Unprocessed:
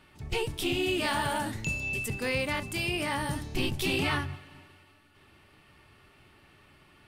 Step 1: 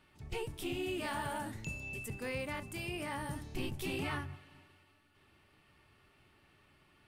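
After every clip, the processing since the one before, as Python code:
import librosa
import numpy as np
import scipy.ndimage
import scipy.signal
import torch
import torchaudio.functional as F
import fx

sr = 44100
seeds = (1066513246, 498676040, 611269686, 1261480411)

y = fx.dynamic_eq(x, sr, hz=4100.0, q=0.94, threshold_db=-48.0, ratio=4.0, max_db=-6)
y = y * 10.0 ** (-8.0 / 20.0)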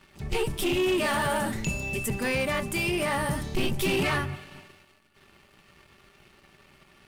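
y = x + 0.49 * np.pad(x, (int(5.1 * sr / 1000.0), 0))[:len(x)]
y = fx.leveller(y, sr, passes=2)
y = y * 10.0 ** (6.5 / 20.0)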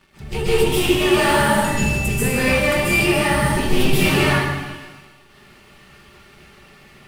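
y = fx.rev_plate(x, sr, seeds[0], rt60_s=1.2, hf_ratio=0.9, predelay_ms=120, drr_db=-9.5)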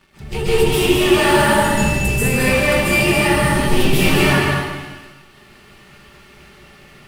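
y = x + 10.0 ** (-5.0 / 20.0) * np.pad(x, (int(213 * sr / 1000.0), 0))[:len(x)]
y = y * 10.0 ** (1.0 / 20.0)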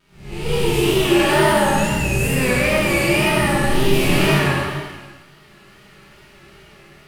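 y = fx.spec_blur(x, sr, span_ms=142.0)
y = fx.wow_flutter(y, sr, seeds[1], rate_hz=2.1, depth_cents=90.0)
y = fx.rev_plate(y, sr, seeds[2], rt60_s=0.76, hf_ratio=0.95, predelay_ms=0, drr_db=-2.0)
y = y * 10.0 ** (-4.5 / 20.0)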